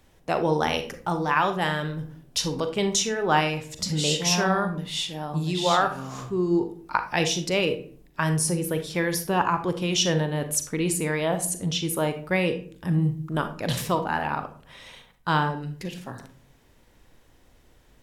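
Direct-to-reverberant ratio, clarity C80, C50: 8.0 dB, 16.5 dB, 10.5 dB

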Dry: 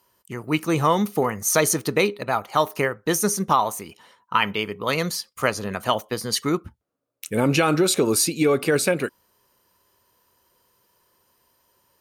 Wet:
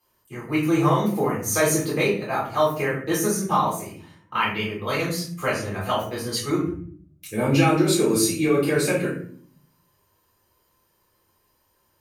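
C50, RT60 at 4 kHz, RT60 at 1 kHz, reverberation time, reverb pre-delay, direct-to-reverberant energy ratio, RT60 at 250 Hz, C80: 5.0 dB, 0.35 s, 0.45 s, 0.55 s, 3 ms, -6.5 dB, 0.90 s, 9.5 dB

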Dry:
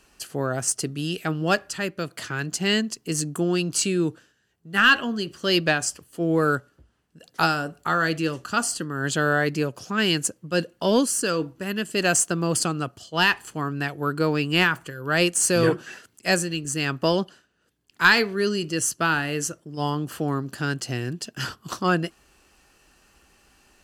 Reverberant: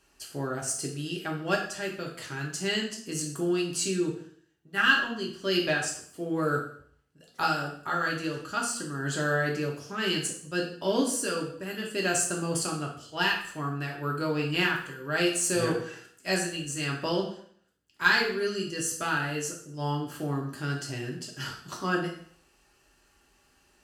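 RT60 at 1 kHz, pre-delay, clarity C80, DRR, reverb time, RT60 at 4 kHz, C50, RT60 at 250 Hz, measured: 0.55 s, 3 ms, 10.0 dB, -1.5 dB, 0.55 s, 0.55 s, 6.5 dB, 0.60 s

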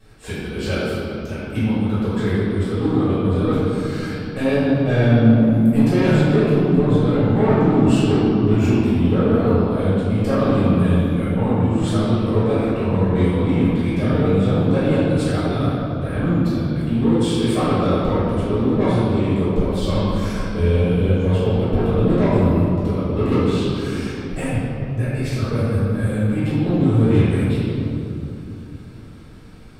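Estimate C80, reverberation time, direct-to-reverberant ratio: -2.0 dB, 2.9 s, -17.0 dB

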